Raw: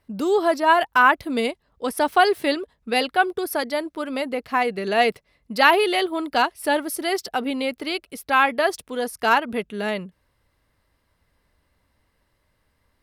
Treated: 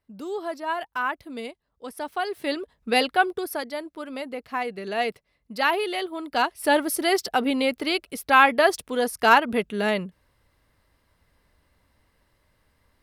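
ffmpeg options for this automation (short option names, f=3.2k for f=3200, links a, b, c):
-af "volume=10dB,afade=t=in:st=2.29:d=0.61:silence=0.237137,afade=t=out:st=2.9:d=0.78:silence=0.398107,afade=t=in:st=6.22:d=0.59:silence=0.354813"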